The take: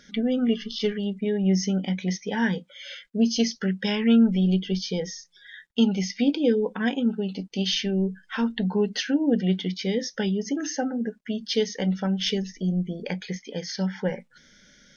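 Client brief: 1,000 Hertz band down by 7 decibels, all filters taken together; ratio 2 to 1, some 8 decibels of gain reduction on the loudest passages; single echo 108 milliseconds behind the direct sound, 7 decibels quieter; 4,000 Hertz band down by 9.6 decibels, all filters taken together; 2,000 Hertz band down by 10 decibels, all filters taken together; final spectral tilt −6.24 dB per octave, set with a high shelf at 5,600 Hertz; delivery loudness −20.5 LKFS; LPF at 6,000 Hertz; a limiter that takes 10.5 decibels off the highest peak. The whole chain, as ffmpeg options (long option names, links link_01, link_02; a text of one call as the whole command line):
ffmpeg -i in.wav -af "lowpass=6000,equalizer=frequency=1000:width_type=o:gain=-7.5,equalizer=frequency=2000:width_type=o:gain=-8,equalizer=frequency=4000:width_type=o:gain=-6.5,highshelf=frequency=5600:gain=-5.5,acompressor=threshold=-30dB:ratio=2,alimiter=level_in=4.5dB:limit=-24dB:level=0:latency=1,volume=-4.5dB,aecho=1:1:108:0.447,volume=15.5dB" out.wav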